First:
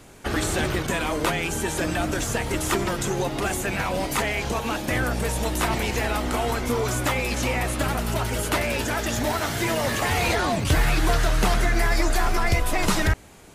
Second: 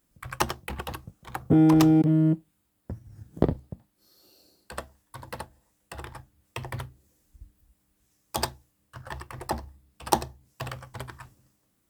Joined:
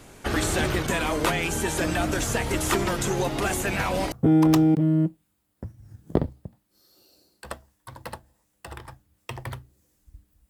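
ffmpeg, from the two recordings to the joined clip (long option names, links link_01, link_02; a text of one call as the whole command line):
ffmpeg -i cue0.wav -i cue1.wav -filter_complex "[1:a]asplit=2[link_01][link_02];[0:a]apad=whole_dur=10.49,atrim=end=10.49,atrim=end=4.122[link_03];[link_02]atrim=start=1.388:end=7.76[link_04];[link_01]atrim=start=0.73:end=1.39,asetpts=PTS-STARTPTS,volume=-9dB,afade=type=in:duration=0.004:curve=hsin,afade=type=out:start_time=0.656:duration=0.004:curve=hsin,adelay=3460[link_05];[link_03][link_04]acrossfade=duration=0.004:curve1=hsin:curve2=hsin[link_06];[link_06][link_05]amix=inputs=2:normalize=0" out.wav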